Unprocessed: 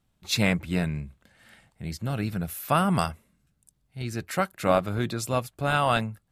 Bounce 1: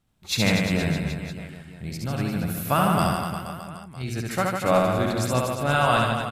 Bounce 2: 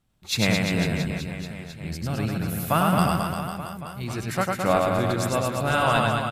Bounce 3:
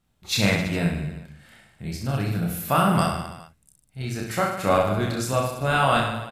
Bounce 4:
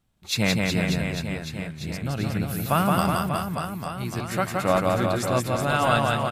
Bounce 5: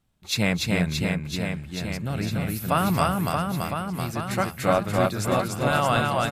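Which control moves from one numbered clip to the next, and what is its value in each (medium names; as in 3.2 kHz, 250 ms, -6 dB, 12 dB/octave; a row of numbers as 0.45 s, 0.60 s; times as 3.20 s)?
reverse bouncing-ball echo, first gap: 70 ms, 100 ms, 30 ms, 170 ms, 290 ms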